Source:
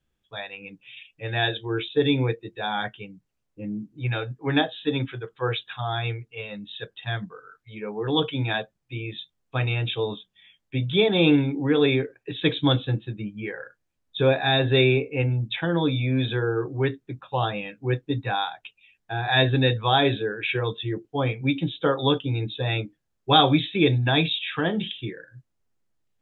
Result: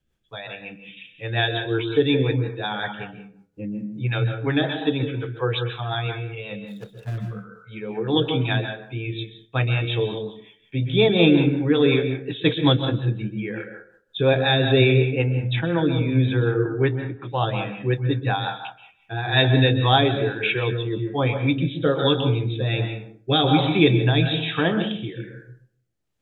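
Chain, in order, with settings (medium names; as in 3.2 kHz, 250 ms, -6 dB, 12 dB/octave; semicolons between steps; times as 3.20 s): 6.58–7.18 s: median filter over 41 samples; reverberation RT60 0.65 s, pre-delay 117 ms, DRR 6 dB; rotary cabinet horn 5.5 Hz, later 1.2 Hz, at 19.31 s; 15.59–17.25 s: low-pass 3 kHz 12 dB/octave; trim +3.5 dB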